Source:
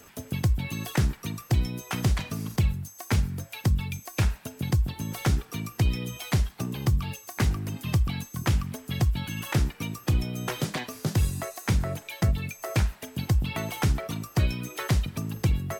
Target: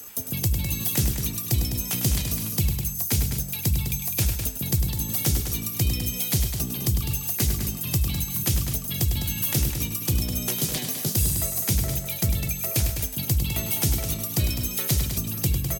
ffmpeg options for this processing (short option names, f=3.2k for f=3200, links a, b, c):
-filter_complex "[0:a]aemphasis=mode=production:type=75fm,aecho=1:1:102|205|249|550:0.398|0.376|0.119|0.141,acrossover=split=100|710|1900[a][b][c][d];[c]acompressor=threshold=-51dB:ratio=6[e];[a][b][e][d]amix=inputs=4:normalize=0,equalizer=f=1.9k:w=1.5:g=-2.5"